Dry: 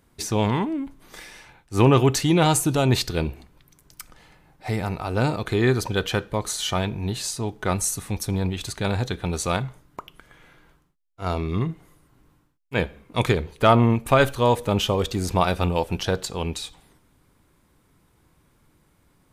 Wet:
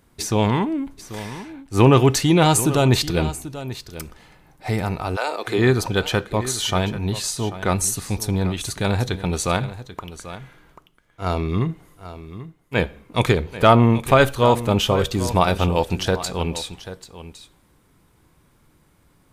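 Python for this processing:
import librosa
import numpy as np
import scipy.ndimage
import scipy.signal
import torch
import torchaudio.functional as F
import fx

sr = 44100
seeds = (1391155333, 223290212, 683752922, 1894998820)

p1 = fx.highpass(x, sr, hz=fx.line((5.15, 700.0), (5.57, 210.0)), slope=24, at=(5.15, 5.57), fade=0.02)
p2 = p1 + fx.echo_single(p1, sr, ms=788, db=-14.0, dry=0)
y = p2 * librosa.db_to_amplitude(3.0)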